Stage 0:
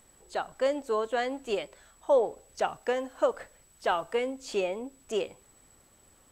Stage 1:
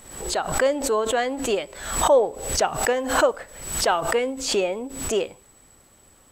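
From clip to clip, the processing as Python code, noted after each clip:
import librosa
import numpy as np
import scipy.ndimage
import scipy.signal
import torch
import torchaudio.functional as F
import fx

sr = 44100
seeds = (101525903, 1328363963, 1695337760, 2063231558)

y = fx.pre_swell(x, sr, db_per_s=73.0)
y = F.gain(torch.from_numpy(y), 6.0).numpy()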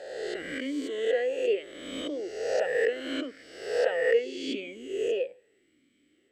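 y = fx.spec_swells(x, sr, rise_s=1.31)
y = fx.vowel_sweep(y, sr, vowels='e-i', hz=0.76)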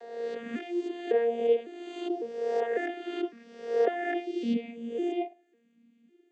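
y = fx.vocoder_arp(x, sr, chord='bare fifth', root=58, every_ms=553)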